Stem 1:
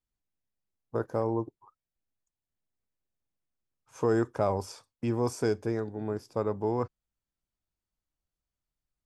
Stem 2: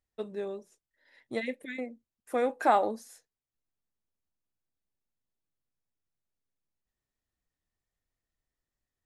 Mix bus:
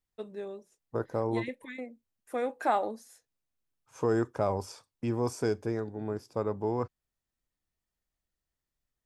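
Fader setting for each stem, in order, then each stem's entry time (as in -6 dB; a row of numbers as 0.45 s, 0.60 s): -1.5 dB, -3.5 dB; 0.00 s, 0.00 s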